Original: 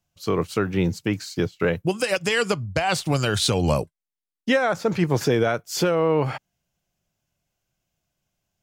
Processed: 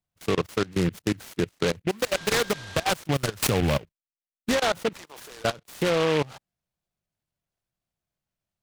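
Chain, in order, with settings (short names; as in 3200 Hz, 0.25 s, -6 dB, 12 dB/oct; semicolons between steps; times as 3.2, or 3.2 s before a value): 0.87–1.58 high shelf 3200 Hz -5 dB; 4.93–5.44 HPF 1000 Hz 12 dB/oct; level quantiser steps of 22 dB; 2.11–2.82 whine 1600 Hz -39 dBFS; noise-modulated delay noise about 2000 Hz, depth 0.1 ms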